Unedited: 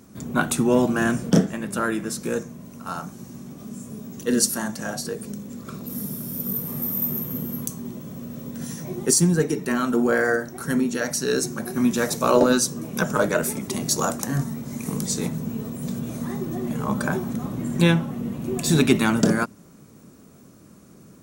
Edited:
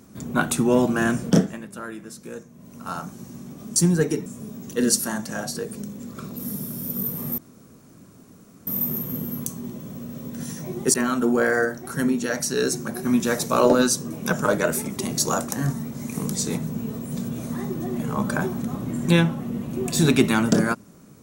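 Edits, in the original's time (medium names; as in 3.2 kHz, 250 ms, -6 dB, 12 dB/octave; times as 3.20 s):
1.37–2.83 s: dip -10.5 dB, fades 0.32 s
6.88 s: insert room tone 1.29 s
9.15–9.65 s: move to 3.76 s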